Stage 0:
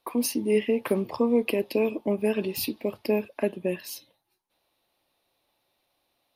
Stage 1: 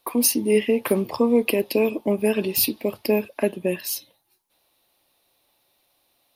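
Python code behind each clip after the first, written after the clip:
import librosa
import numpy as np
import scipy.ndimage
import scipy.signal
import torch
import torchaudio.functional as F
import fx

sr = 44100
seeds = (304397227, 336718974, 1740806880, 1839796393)

y = fx.high_shelf(x, sr, hz=5600.0, db=9.0)
y = y * 10.0 ** (4.0 / 20.0)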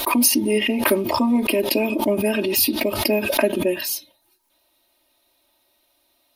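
y = x + 0.97 * np.pad(x, (int(3.2 * sr / 1000.0), 0))[:len(x)]
y = fx.pre_swell(y, sr, db_per_s=47.0)
y = y * 10.0 ** (-1.0 / 20.0)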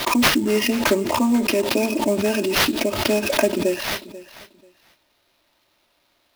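y = fx.sample_hold(x, sr, seeds[0], rate_hz=8000.0, jitter_pct=20)
y = fx.echo_feedback(y, sr, ms=488, feedback_pct=20, wet_db=-17.5)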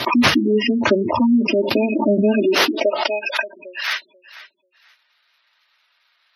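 y = fx.spec_gate(x, sr, threshold_db=-15, keep='strong')
y = fx.filter_sweep_highpass(y, sr, from_hz=86.0, to_hz=1500.0, start_s=1.82, end_s=3.45, q=1.7)
y = y * 10.0 ** (2.5 / 20.0)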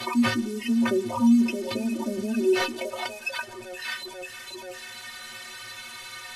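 y = fx.delta_mod(x, sr, bps=64000, step_db=-25.0)
y = fx.stiff_resonator(y, sr, f0_hz=110.0, decay_s=0.29, stiffness=0.03)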